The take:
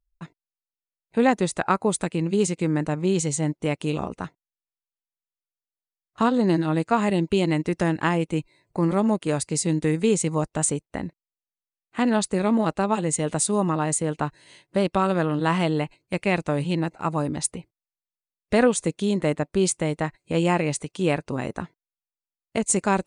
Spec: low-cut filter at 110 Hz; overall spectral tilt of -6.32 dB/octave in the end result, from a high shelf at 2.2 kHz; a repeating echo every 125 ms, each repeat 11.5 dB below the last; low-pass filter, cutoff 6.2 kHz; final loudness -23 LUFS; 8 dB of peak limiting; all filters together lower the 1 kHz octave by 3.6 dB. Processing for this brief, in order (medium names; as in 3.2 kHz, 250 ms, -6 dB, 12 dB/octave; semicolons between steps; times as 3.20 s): high-pass 110 Hz; low-pass 6.2 kHz; peaking EQ 1 kHz -3 dB; treble shelf 2.2 kHz -8.5 dB; peak limiter -16.5 dBFS; feedback delay 125 ms, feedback 27%, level -11.5 dB; trim +4 dB